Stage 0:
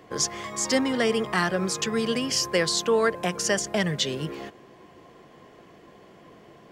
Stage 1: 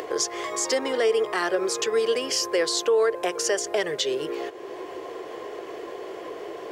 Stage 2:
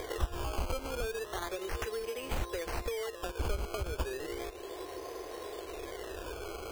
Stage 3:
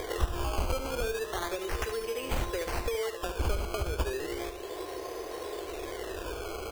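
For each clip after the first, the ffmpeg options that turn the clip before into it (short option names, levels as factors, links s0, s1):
-af "lowshelf=f=280:t=q:w=3:g=-12,alimiter=limit=0.2:level=0:latency=1:release=96,acompressor=mode=upward:threshold=0.0631:ratio=2.5"
-af "acrusher=samples=16:mix=1:aa=0.000001:lfo=1:lforange=16:lforate=0.34,acompressor=threshold=0.0355:ratio=6,lowshelf=f=100:t=q:w=1.5:g=14,volume=0.531"
-af "aecho=1:1:72:0.355,volume=1.5"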